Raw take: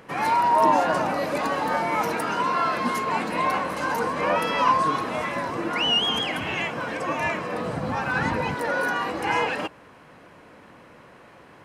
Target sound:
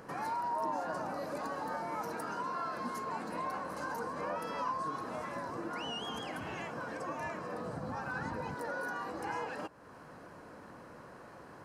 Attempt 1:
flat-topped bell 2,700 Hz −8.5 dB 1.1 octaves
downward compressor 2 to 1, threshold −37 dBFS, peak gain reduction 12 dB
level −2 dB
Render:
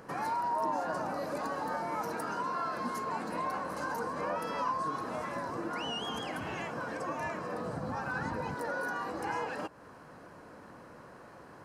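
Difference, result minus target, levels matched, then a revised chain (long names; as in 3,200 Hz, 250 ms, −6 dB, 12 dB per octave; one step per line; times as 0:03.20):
downward compressor: peak gain reduction −3 dB
flat-topped bell 2,700 Hz −8.5 dB 1.1 octaves
downward compressor 2 to 1, threshold −43 dBFS, peak gain reduction 15 dB
level −2 dB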